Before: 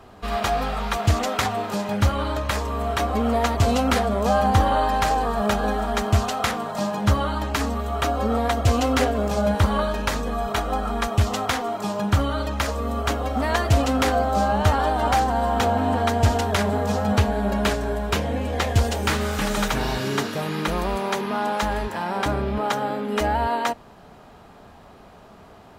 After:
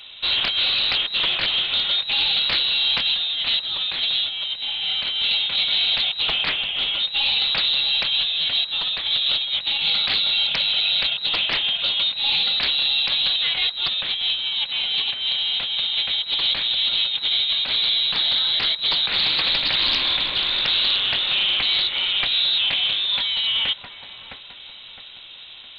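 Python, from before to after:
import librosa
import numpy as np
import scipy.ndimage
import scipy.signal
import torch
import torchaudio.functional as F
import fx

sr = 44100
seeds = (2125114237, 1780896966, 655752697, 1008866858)

p1 = 10.0 ** (-23.5 / 20.0) * np.tanh(x / 10.0 ** (-23.5 / 20.0))
p2 = x + F.gain(torch.from_numpy(p1), -1.5).numpy()
p3 = fx.highpass(p2, sr, hz=340.0, slope=12, at=(6.49, 6.99))
p4 = p3 + fx.echo_wet_highpass(p3, sr, ms=662, feedback_pct=40, hz=2400.0, wet_db=-10.0, dry=0)
p5 = fx.over_compress(p4, sr, threshold_db=-20.0, ratio=-0.5)
p6 = fx.freq_invert(p5, sr, carrier_hz=3900)
p7 = fx.doppler_dist(p6, sr, depth_ms=0.41)
y = F.gain(torch.from_numpy(p7), -1.5).numpy()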